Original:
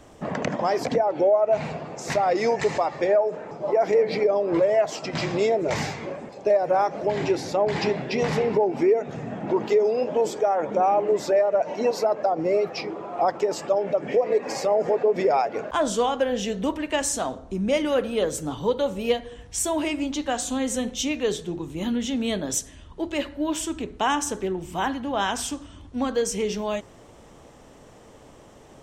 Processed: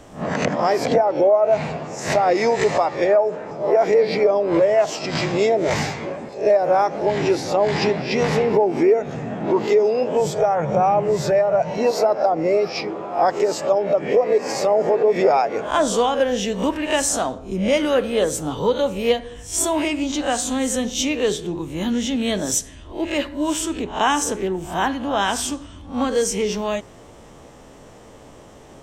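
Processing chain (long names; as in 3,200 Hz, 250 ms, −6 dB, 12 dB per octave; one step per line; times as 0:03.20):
peak hold with a rise ahead of every peak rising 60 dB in 0.33 s
0:10.19–0:11.78: low shelf with overshoot 200 Hz +8.5 dB, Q 3
level +3.5 dB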